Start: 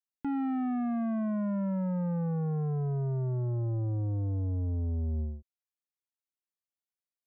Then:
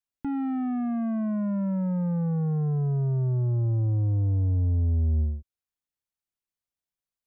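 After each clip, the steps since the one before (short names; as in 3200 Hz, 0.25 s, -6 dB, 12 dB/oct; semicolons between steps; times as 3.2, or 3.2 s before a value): low shelf 150 Hz +10.5 dB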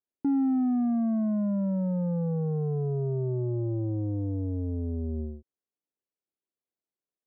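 band-pass 370 Hz, Q 1.6; gain +7 dB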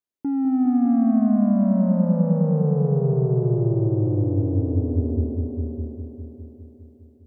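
AGC gain up to 6 dB; on a send: multi-head echo 0.203 s, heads all three, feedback 48%, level -8 dB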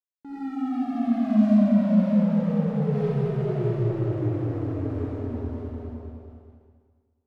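resonator 210 Hz, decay 0.85 s, mix 80%; crossover distortion -44.5 dBFS; reverb RT60 1.7 s, pre-delay 25 ms, DRR -9 dB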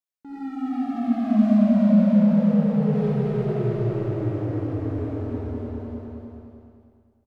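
feedback echo 0.309 s, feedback 26%, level -4 dB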